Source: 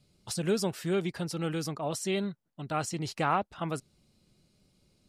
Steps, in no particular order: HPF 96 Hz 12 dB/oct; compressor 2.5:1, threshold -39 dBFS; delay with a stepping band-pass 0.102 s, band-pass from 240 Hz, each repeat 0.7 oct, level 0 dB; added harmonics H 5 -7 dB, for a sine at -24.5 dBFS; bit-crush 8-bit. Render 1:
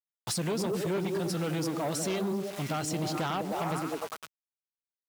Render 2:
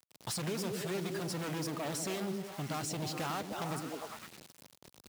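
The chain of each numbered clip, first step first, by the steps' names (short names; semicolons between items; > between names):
delay with a stepping band-pass > bit-crush > compressor > added harmonics > HPF; added harmonics > delay with a stepping band-pass > compressor > bit-crush > HPF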